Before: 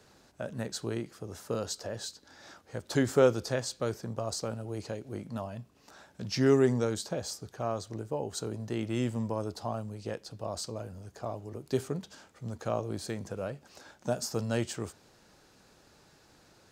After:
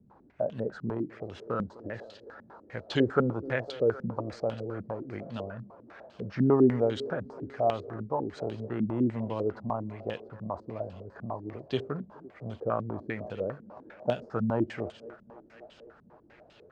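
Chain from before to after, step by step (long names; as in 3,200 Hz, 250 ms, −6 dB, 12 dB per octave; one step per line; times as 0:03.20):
feedback echo with a high-pass in the loop 254 ms, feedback 82%, high-pass 200 Hz, level −18 dB
low-pass on a step sequencer 10 Hz 210–3,100 Hz
level −1 dB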